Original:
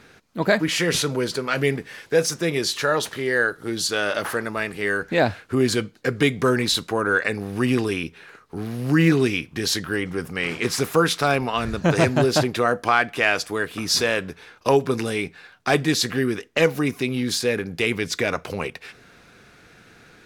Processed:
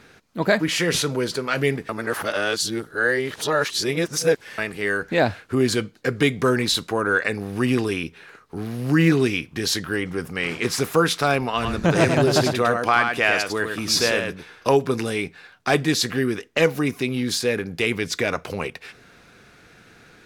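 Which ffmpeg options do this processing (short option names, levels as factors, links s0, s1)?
-filter_complex "[0:a]asettb=1/sr,asplit=3[s0][s1][s2];[s0]atrim=end=11.524[s3];[s1]atrim=start=11.52:end=14.74,asetpts=PTS-STARTPTS,afade=t=in:d=0.004:c=qsin,afade=t=out:st=3.216:d=0.004:c=qsin,aecho=1:1:102:0.531,atrim=end_sample=142002[s4];[s2]atrim=start=14.736[s5];[s3][s4]acrossfade=d=0.004:c1=hsin:c2=qsin[s6];[s6][s5]acrossfade=d=0.004:c1=qsin:c2=hsin,asplit=3[s7][s8][s9];[s7]atrim=end=1.892[s10];[s8]atrim=start=1.888:end=4.582,asetpts=PTS-STARTPTS,areverse[s11];[s9]atrim=start=4.578[s12];[s10][s11]acrossfade=d=0.004:c1=hsin:c2=hsin[s13];[s13][s12]acrossfade=d=0.004:c1=hsin:c2=hsin"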